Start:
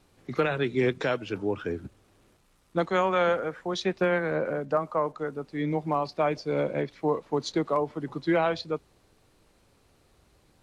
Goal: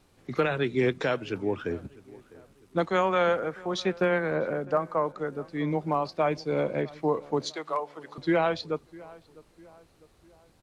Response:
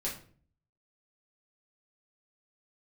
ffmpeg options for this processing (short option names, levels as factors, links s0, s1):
-filter_complex "[0:a]asettb=1/sr,asplit=3[s0][s1][s2];[s0]atrim=end=7.504[s3];[s1]atrim=start=7.5:end=8.18,asetpts=PTS-STARTPTS,afade=t=in:d=0.004:c=qsin,afade=t=out:st=0.676:d=0.004:c=qsin,highpass=720[s4];[s2]atrim=start=8.176[s5];[s3][s4]acrossfade=d=0.004:c1=hsin:c2=qsin[s6];[s6][s5]acrossfade=d=0.004:c1=qsin:c2=hsin,asplit=2[s7][s8];[s8]adelay=652,lowpass=f=1800:p=1,volume=0.0891,asplit=2[s9][s10];[s10]adelay=652,lowpass=f=1800:p=1,volume=0.48,asplit=2[s11][s12];[s12]adelay=652,lowpass=f=1800:p=1,volume=0.48[s13];[s9][s11][s13]amix=inputs=3:normalize=0[s14];[s7][s14]amix=inputs=2:normalize=0"